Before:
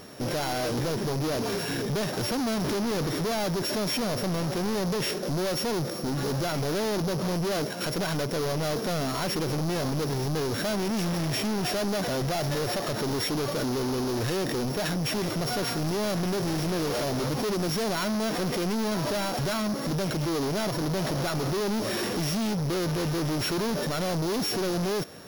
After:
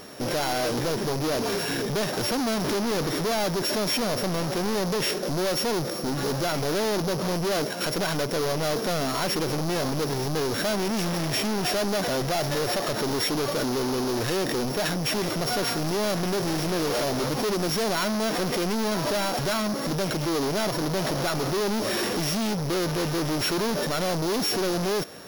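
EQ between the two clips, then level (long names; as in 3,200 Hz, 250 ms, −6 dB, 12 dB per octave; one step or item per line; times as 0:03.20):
parametric band 91 Hz −6 dB 2.5 octaves
+3.5 dB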